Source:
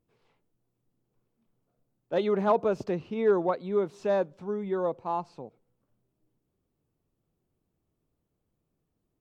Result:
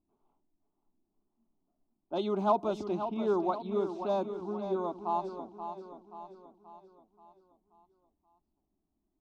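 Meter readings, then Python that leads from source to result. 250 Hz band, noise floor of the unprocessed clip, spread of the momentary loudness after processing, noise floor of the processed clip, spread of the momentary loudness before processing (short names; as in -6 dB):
-2.0 dB, -80 dBFS, 18 LU, -82 dBFS, 9 LU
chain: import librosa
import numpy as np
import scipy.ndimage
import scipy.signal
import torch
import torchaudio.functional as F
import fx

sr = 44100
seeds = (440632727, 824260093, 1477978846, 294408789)

y = fx.peak_eq(x, sr, hz=3500.0, db=3.5, octaves=0.37)
y = fx.fixed_phaser(y, sr, hz=490.0, stages=6)
y = fx.env_lowpass(y, sr, base_hz=1000.0, full_db=-26.5)
y = fx.echo_feedback(y, sr, ms=530, feedback_pct=49, wet_db=-9)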